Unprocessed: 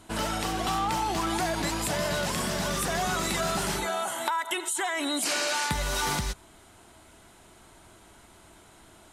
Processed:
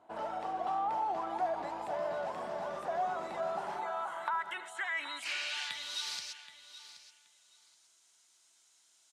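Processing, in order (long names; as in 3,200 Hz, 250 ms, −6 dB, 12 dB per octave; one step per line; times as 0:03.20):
band-pass filter sweep 730 Hz → 5,900 Hz, 0:03.51–0:06.58
on a send: repeating echo 776 ms, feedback 18%, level −14 dB
on the sum: level −1.5 dB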